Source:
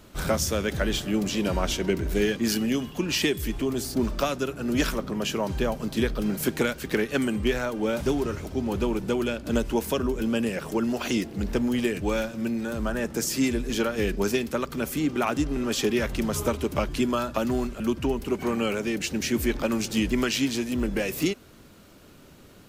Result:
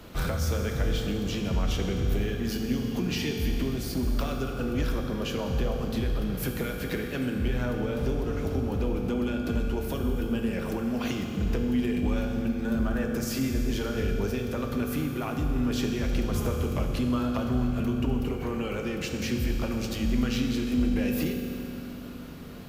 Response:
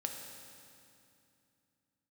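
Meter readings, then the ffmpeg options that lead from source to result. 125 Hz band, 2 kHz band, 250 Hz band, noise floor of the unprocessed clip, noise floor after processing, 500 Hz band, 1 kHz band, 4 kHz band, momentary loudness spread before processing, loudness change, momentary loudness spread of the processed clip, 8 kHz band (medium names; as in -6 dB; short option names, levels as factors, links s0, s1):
+3.5 dB, -5.5 dB, -2.0 dB, -51 dBFS, -36 dBFS, -5.0 dB, -5.5 dB, -5.5 dB, 4 LU, -2.5 dB, 4 LU, -8.5 dB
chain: -filter_complex "[0:a]equalizer=f=8000:w=1.2:g=-7.5,acrossover=split=130[s0][s1];[s1]acompressor=threshold=0.0178:ratio=10[s2];[s0][s2]amix=inputs=2:normalize=0,asoftclip=type=tanh:threshold=0.0668[s3];[1:a]atrim=start_sample=2205,asetrate=39249,aresample=44100[s4];[s3][s4]afir=irnorm=-1:irlink=0,volume=1.88"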